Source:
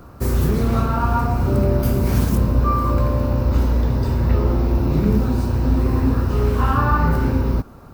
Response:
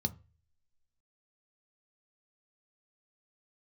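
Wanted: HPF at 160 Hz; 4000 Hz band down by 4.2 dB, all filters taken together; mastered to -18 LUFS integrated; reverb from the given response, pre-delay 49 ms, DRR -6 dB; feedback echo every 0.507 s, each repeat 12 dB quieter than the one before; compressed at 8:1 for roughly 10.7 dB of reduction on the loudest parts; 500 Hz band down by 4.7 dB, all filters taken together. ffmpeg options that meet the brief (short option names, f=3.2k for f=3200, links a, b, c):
-filter_complex "[0:a]highpass=160,equalizer=f=500:t=o:g=-6,equalizer=f=4k:t=o:g=-5.5,acompressor=threshold=-28dB:ratio=8,aecho=1:1:507|1014|1521:0.251|0.0628|0.0157,asplit=2[a][b];[1:a]atrim=start_sample=2205,adelay=49[c];[b][c]afir=irnorm=-1:irlink=0,volume=4dB[d];[a][d]amix=inputs=2:normalize=0"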